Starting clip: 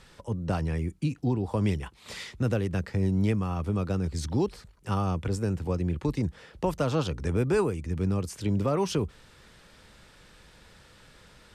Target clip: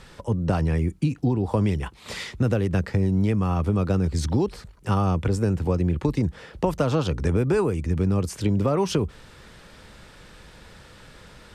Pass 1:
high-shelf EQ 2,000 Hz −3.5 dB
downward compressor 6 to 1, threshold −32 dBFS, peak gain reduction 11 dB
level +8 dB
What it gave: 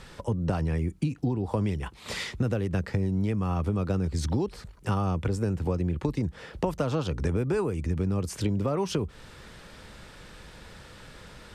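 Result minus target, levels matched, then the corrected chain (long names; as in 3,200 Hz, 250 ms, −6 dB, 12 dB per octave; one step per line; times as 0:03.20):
downward compressor: peak gain reduction +5.5 dB
high-shelf EQ 2,000 Hz −3.5 dB
downward compressor 6 to 1, threshold −25.5 dBFS, peak gain reduction 5.5 dB
level +8 dB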